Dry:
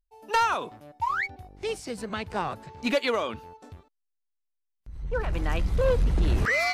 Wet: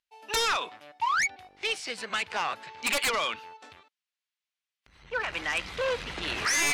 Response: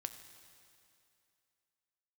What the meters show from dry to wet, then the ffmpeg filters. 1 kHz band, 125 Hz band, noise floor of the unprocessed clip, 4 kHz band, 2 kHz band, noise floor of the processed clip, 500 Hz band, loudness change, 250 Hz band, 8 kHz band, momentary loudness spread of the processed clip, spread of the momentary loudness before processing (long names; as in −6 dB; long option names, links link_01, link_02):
−2.0 dB, −19.0 dB, −79 dBFS, +6.5 dB, +1.5 dB, below −85 dBFS, −6.0 dB, −1.0 dB, −10.0 dB, +12.0 dB, 8 LU, 10 LU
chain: -af "bandpass=frequency=2700:width_type=q:width=1.1:csg=0,aeval=exprs='0.15*sin(PI/2*4.47*val(0)/0.15)':channel_layout=same,volume=-5.5dB"